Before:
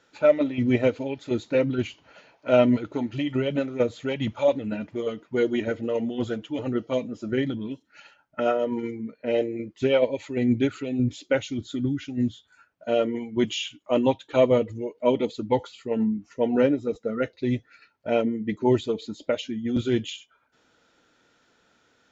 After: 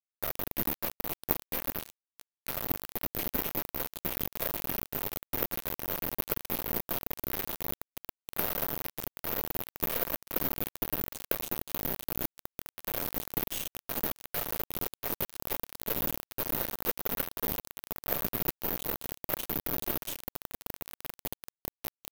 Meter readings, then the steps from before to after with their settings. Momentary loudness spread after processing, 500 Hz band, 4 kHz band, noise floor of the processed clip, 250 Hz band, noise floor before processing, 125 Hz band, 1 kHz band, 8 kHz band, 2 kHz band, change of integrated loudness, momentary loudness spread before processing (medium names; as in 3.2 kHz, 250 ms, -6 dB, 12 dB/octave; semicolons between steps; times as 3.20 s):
9 LU, -17.5 dB, -5.0 dB, under -85 dBFS, -17.0 dB, -66 dBFS, -12.5 dB, -7.0 dB, no reading, -6.5 dB, -7.5 dB, 9 LU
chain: treble shelf 4.4 kHz +10 dB; de-hum 171.7 Hz, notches 35; peak limiter -16 dBFS, peak gain reduction 11.5 dB; compression 6:1, threshold -26 dBFS, peak gain reduction 6.5 dB; on a send: echo with a slow build-up 196 ms, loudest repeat 8, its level -15 dB; on the sum: whisper effect; Chebyshev shaper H 3 -7 dB, 5 -18 dB, 6 -32 dB, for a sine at -14.5 dBFS; word length cut 6-bit, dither none; careless resampling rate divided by 3×, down filtered, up zero stuff; trim +2.5 dB